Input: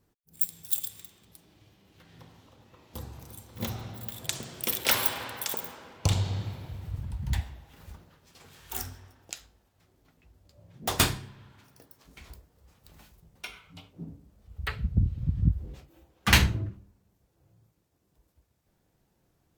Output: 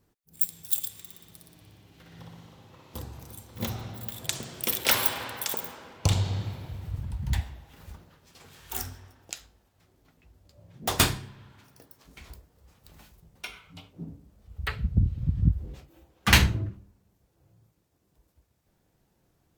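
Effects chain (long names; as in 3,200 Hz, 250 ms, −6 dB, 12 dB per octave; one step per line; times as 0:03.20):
0:01.01–0:03.02: flutter between parallel walls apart 10.2 metres, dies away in 1 s
level +1.5 dB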